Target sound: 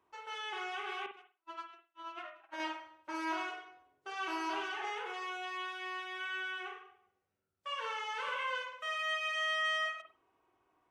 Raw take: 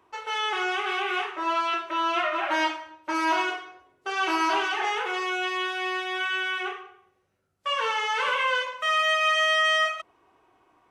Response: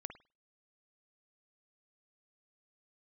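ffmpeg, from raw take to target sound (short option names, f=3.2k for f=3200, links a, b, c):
-filter_complex "[0:a]asettb=1/sr,asplit=3[a][b][c];[a]atrim=end=1.064[d];[b]atrim=start=1.06:end=2.6,asetpts=PTS-STARTPTS,afade=t=in:d=0.004:c=qsin,afade=t=out:st=1.536:d=0.004:c=qsin,agate=range=-52dB:threshold=-23dB:ratio=16:detection=peak[e];[c]atrim=start=2.596[f];[d][e]acrossfade=d=0.004:c1=hsin:c2=qsin[g];[g][f]acrossfade=d=0.004:c1=qsin:c2=hsin[h];[1:a]atrim=start_sample=2205[i];[h][i]afir=irnorm=-1:irlink=0,volume=-8.5dB"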